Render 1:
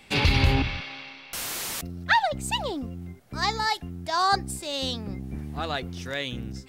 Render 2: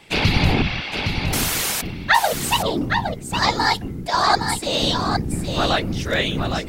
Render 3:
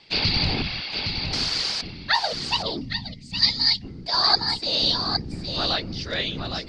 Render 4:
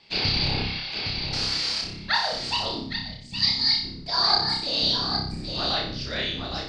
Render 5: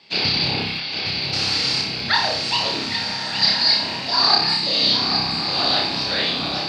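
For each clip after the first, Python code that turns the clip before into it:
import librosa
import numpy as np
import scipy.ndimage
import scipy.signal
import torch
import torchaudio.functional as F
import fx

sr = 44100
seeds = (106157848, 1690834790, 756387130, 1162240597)

y1 = fx.rider(x, sr, range_db=3, speed_s=0.5)
y1 = fx.whisperise(y1, sr, seeds[0])
y1 = y1 + 10.0 ** (-6.0 / 20.0) * np.pad(y1, (int(814 * sr / 1000.0), 0))[:len(y1)]
y1 = F.gain(torch.from_numpy(y1), 6.5).numpy()
y2 = fx.spec_box(y1, sr, start_s=2.8, length_s=1.04, low_hz=280.0, high_hz=1800.0, gain_db=-14)
y2 = fx.ladder_lowpass(y2, sr, hz=4900.0, resonance_pct=80)
y2 = F.gain(torch.from_numpy(y2), 4.0).numpy()
y3 = fx.room_flutter(y2, sr, wall_m=5.2, rt60_s=0.54)
y3 = F.gain(torch.from_numpy(y3), -4.0).numpy()
y4 = fx.rattle_buzz(y3, sr, strikes_db=-39.0, level_db=-26.0)
y4 = scipy.signal.sosfilt(scipy.signal.butter(2, 140.0, 'highpass', fs=sr, output='sos'), y4)
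y4 = fx.rev_bloom(y4, sr, seeds[1], attack_ms=1460, drr_db=4.0)
y4 = F.gain(torch.from_numpy(y4), 4.5).numpy()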